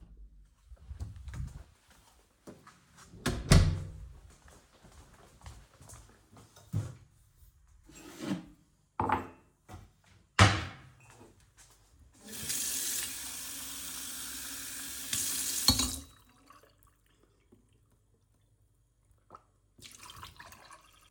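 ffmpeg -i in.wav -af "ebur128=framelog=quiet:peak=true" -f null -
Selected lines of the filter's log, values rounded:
Integrated loudness:
  I:         -32.0 LUFS
  Threshold: -46.0 LUFS
Loudness range:
  LRA:        14.8 LU
  Threshold: -55.7 LUFS
  LRA low:   -47.4 LUFS
  LRA high:  -32.6 LUFS
True peak:
  Peak:       -7.2 dBFS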